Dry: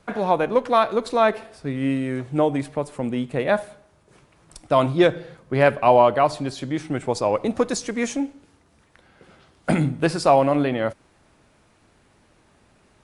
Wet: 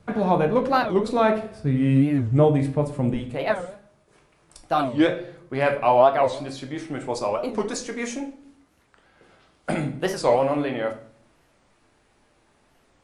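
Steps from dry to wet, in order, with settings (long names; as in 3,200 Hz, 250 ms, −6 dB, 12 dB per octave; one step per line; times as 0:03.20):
parametric band 99 Hz +12.5 dB 2.6 octaves, from 0:03.14 −5.5 dB
rectangular room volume 59 cubic metres, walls mixed, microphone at 0.41 metres
wow of a warped record 45 rpm, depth 250 cents
level −4 dB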